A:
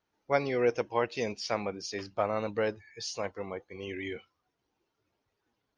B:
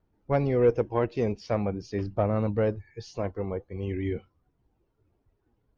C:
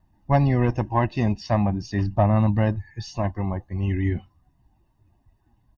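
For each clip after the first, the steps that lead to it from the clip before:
tilt EQ -4.5 dB/octave; saturation -12 dBFS, distortion -23 dB; phaser 0.47 Hz, delay 3.1 ms, feedback 22%
comb 1.1 ms, depth 92%; trim +4.5 dB

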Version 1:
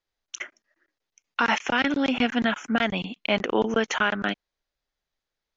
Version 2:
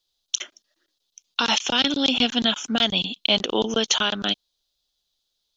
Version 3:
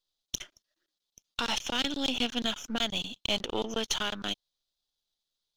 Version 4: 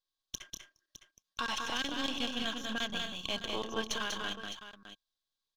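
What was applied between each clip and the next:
resonant high shelf 2.7 kHz +10 dB, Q 3
partial rectifier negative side -7 dB; trim -7 dB
small resonant body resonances 1.1/1.6 kHz, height 17 dB, ringing for 90 ms; on a send: multi-tap echo 193/221/610 ms -4/-12/-12 dB; on the sum: trim -7 dB

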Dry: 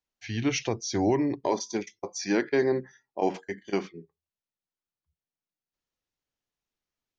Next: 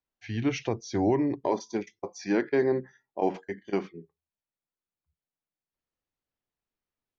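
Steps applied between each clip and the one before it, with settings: low-pass 2 kHz 6 dB/octave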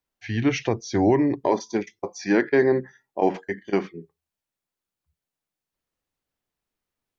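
dynamic bell 1.8 kHz, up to +5 dB, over -53 dBFS, Q 4; trim +5.5 dB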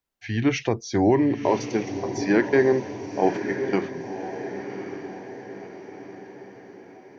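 echo that smears into a reverb 1092 ms, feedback 51%, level -9 dB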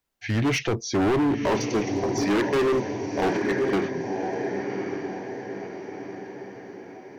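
hard clipper -23.5 dBFS, distortion -5 dB; trim +4 dB

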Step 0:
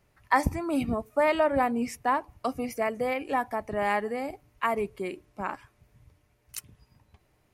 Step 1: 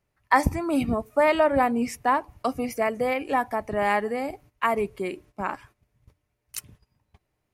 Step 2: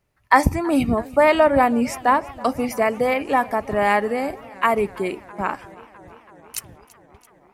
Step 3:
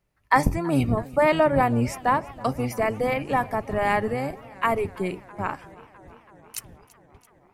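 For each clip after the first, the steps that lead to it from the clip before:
gate -54 dBFS, range -13 dB; trim +3.5 dB
modulated delay 331 ms, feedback 75%, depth 103 cents, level -22 dB; trim +5 dB
octave divider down 1 oct, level -1 dB; trim -4.5 dB

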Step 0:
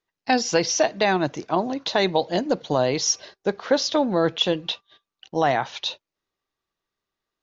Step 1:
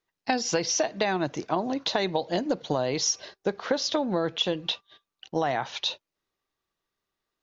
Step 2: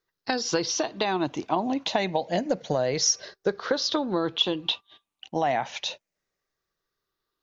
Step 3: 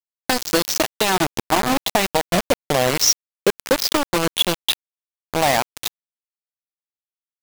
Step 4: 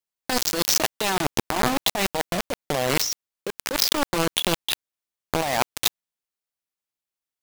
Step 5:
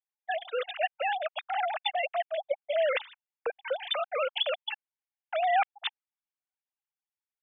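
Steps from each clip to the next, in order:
compression, threshold -22 dBFS, peak gain reduction 8 dB
drifting ripple filter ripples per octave 0.58, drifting -0.29 Hz, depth 7 dB
bit crusher 4-bit; trim +6 dB
compressor with a negative ratio -23 dBFS, ratio -1
formants replaced by sine waves; trim -6 dB

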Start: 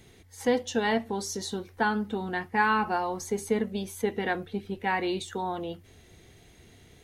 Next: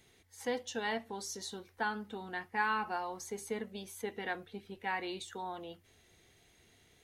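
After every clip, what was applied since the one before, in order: bass shelf 470 Hz -8.5 dB; trim -6.5 dB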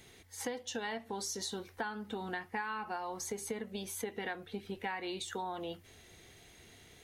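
compression 8:1, threshold -43 dBFS, peak gain reduction 16 dB; trim +7.5 dB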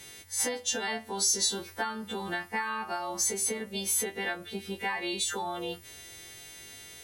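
partials quantised in pitch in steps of 2 st; trim +5 dB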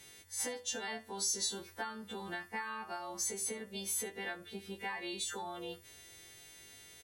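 delay 71 ms -21 dB; trim -8 dB

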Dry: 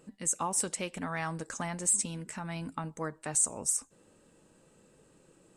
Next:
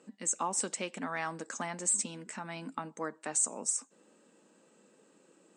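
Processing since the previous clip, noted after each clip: elliptic band-pass 210–7900 Hz, stop band 40 dB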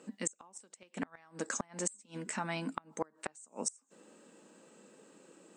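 inverted gate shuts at -24 dBFS, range -30 dB; trim +4.5 dB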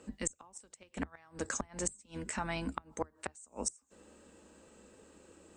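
octave divider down 2 oct, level -6 dB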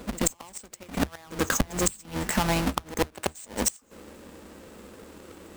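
square wave that keeps the level; pre-echo 84 ms -16 dB; trim +7.5 dB

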